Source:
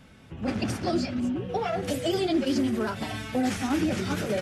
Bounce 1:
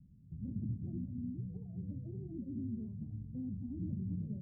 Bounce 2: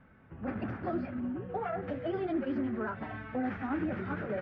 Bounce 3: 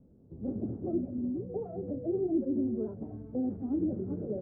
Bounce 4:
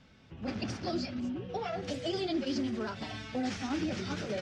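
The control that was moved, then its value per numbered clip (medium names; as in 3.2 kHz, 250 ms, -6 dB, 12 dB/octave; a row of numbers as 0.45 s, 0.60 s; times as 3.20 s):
four-pole ladder low-pass, frequency: 200 Hz, 2 kHz, 520 Hz, 6.5 kHz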